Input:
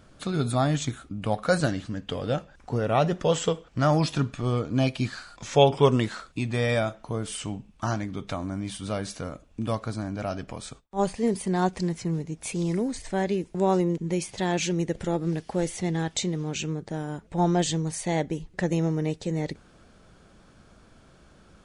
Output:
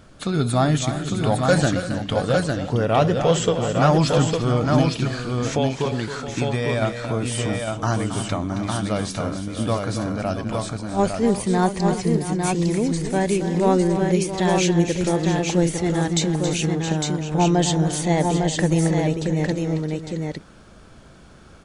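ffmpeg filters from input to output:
-filter_complex "[0:a]asettb=1/sr,asplit=3[a][b][c];[a]atrim=end=4.814[d];[b]atrim=start=4.81:end=6.82,asetpts=PTS-STARTPTS,afade=t=in:d=0.004:c=qsin,afade=t=out:st=2.006:d=0.004:c=qsin,acompressor=threshold=-26dB:ratio=6[e];[c]atrim=start=6.816[f];[d][e]acrossfade=d=0.004:c1=hsin:c2=qsin[g];[g][f]acrossfade=d=0.004:c1=qsin:c2=hsin,asoftclip=type=tanh:threshold=-12.5dB,aecho=1:1:272|341|669|855:0.316|0.168|0.251|0.631,volume=5.5dB"

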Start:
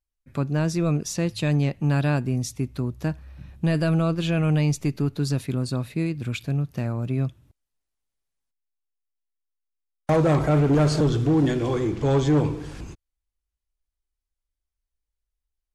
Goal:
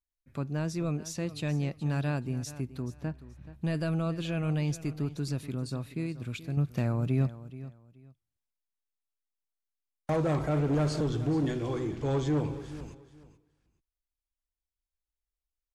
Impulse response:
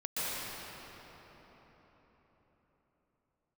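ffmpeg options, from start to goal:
-filter_complex "[0:a]asettb=1/sr,asplit=3[a][b][c];[a]atrim=end=2.824[d];[b]atrim=start=2.82:end=3.53,asetpts=PTS-STARTPTS,afade=t=in:d=0.004:c=qsin,afade=t=out:st=0.706:d=0.004:c=qsin,lowpass=f=2.4k:p=1[e];[c]atrim=start=3.526[f];[d][e]acrossfade=d=0.004:c1=hsin:c2=qsin[g];[g][f]acrossfade=d=0.004:c1=qsin:c2=hsin,asettb=1/sr,asplit=3[h][i][j];[h]atrim=end=6.574[k];[i]atrim=start=6.57:end=7.27,asetpts=PTS-STARTPTS,afade=t=in:d=0.004:c=qsin,afade=t=out:st=0.696:d=0.004:c=qsin,acontrast=75[l];[j]atrim=start=7.266[m];[k][l]acrossfade=d=0.004:c1=hsin:c2=qsin[n];[n][m]acrossfade=d=0.004:c1=qsin:c2=hsin,aecho=1:1:428|856:0.168|0.0386,volume=-8.5dB"

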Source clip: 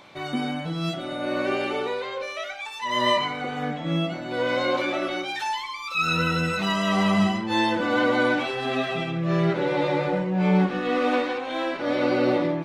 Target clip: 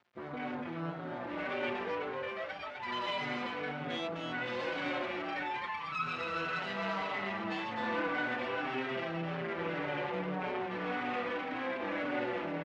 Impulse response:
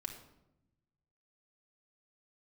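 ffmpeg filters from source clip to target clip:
-filter_complex "[0:a]asettb=1/sr,asplit=3[a][b][c];[a]atrim=end=3.074[d];[b]atrim=start=3.07:end=4.8,asetpts=PTS-STARTPTS,afade=t=in:d=0.004:c=qsin,afade=t=out:st=1.726:d=0.004:c=qsin,aemphasis=mode=production:type=75kf[e];[c]atrim=start=4.796[f];[d][e]acrossfade=d=0.004:c1=hsin:c2=qsin[g];[g][f]acrossfade=d=0.004:c1=qsin:c2=hsin,afwtdn=0.0224,acrossover=split=310|1400[h][i][j];[h]acompressor=threshold=-39dB:ratio=6[k];[i]aeval=exprs='(tanh(31.6*val(0)+0.4)-tanh(0.4))/31.6':c=same[l];[j]alimiter=level_in=1dB:limit=-24dB:level=0:latency=1:release=335,volume=-1dB[m];[k][l][m]amix=inputs=3:normalize=0,aeval=exprs='max(val(0),0)':c=same,acrusher=bits=9:mix=0:aa=0.000001,highpass=130,lowpass=2.5k,aecho=1:1:256:0.668,asplit=2[n][o];[o]adelay=5.1,afreqshift=-1.8[p];[n][p]amix=inputs=2:normalize=1,volume=3.5dB"

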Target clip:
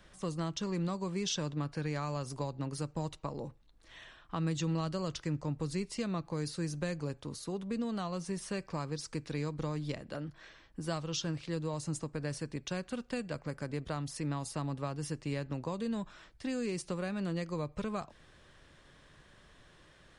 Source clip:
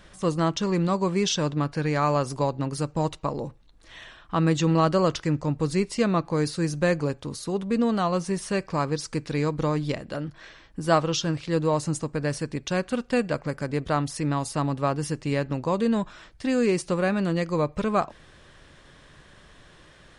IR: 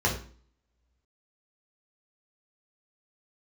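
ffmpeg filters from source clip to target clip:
-filter_complex "[0:a]acrossover=split=180|3000[a][b][c];[b]acompressor=threshold=-27dB:ratio=6[d];[a][d][c]amix=inputs=3:normalize=0,volume=-8dB"

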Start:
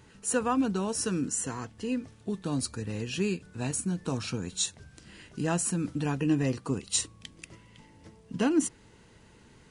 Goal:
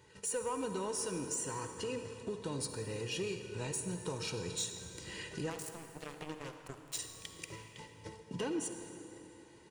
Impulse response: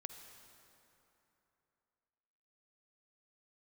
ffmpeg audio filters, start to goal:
-filter_complex "[0:a]agate=range=-11dB:threshold=-53dB:ratio=16:detection=peak,highpass=51,lowshelf=f=91:g=-11,bandreject=f=1.4k:w=7.7,aecho=1:1:2.1:0.63,acompressor=threshold=-46dB:ratio=2.5,asoftclip=type=tanh:threshold=-34.5dB,asettb=1/sr,asplit=3[a][b][c];[a]atrim=end=5.504[d];[b]atrim=start=5.5:end=6.99,asetpts=PTS-STARTPTS,afade=t=in:d=0.004:c=qsin,afade=t=out:st=1.486:d=0.004:c=qsin,acrusher=bits=5:mix=0:aa=0.5[e];[c]atrim=start=6.986[f];[d][e]acrossfade=d=0.004:c1=hsin:c2=qsin[g];[g][f]acrossfade=d=0.004:c1=qsin:c2=hsin[h];[1:a]atrim=start_sample=2205[i];[h][i]afir=irnorm=-1:irlink=0,volume=10.5dB"

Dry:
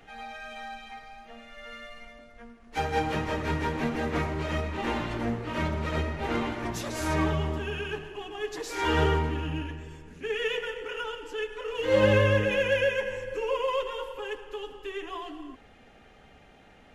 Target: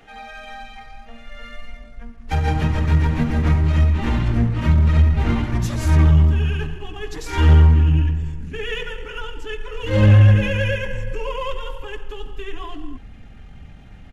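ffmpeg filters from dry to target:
-af "asubboost=boost=8:cutoff=160,acontrast=71,atempo=1.2,volume=-2.5dB"

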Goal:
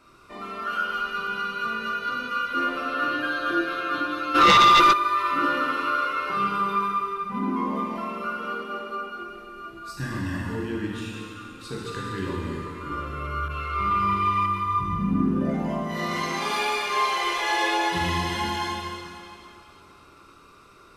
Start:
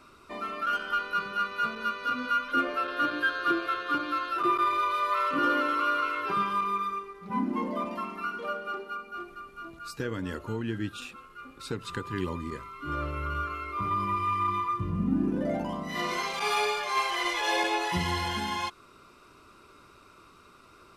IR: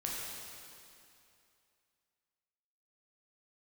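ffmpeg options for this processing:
-filter_complex "[0:a]asettb=1/sr,asplit=3[a][b][c];[a]atrim=end=9.934[d];[b]atrim=start=9.93:end=10.48,asetpts=PTS-STARTPTS,afade=t=in:d=0.004:c=qsin,afade=t=out:st=0.546:d=0.004:c=qsin,aecho=1:1:1.1:0.97,atrim=end_sample=24255[e];[c]atrim=start=10.476[f];[d][e]acrossfade=d=0.004:c1=hsin:c2=qsin[g];[g][f]acrossfade=d=0.004:c1=qsin:c2=hsin[h];[1:a]atrim=start_sample=2205[i];[h][i]afir=irnorm=-1:irlink=0,asplit=3[j][k][l];[j]afade=t=out:st=4.34:d=0.02[m];[k]aeval=exprs='0.266*sin(PI/2*3.16*val(0)/0.266)':c=same,afade=t=in:st=4.34:d=0.02,afade=t=out:st=4.92:d=0.02[n];[l]afade=t=in:st=4.92:d=0.02[o];[m][n][o]amix=inputs=3:normalize=0,asettb=1/sr,asplit=3[p][q][r];[p]atrim=end=13.484[s];[q]atrim=start=13.48:end=14.46,asetpts=PTS-STARTPTS,afade=t=in:d=0.004:c=qsin,afade=t=out:st=0.976:d=0.004:c=qsin,adynamicequalizer=threshold=0.00562:dfrequency=3200:dqfactor=0.73:tfrequency=3200:tqfactor=0.73:attack=5:release=100:ratio=0.375:range=3.5:mode=boostabove:tftype=bell[t];[r]atrim=start=14.456[u];[s][t]acrossfade=d=0.004:c1=hsin:c2=qsin[v];[v][u]acrossfade=d=0.004:c1=qsin:c2=hsin"

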